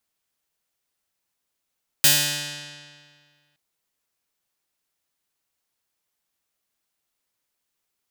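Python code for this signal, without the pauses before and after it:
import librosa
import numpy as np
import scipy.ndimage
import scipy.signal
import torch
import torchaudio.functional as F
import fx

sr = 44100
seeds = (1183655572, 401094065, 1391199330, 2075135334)

y = fx.pluck(sr, length_s=1.52, note=50, decay_s=1.91, pick=0.44, brightness='bright')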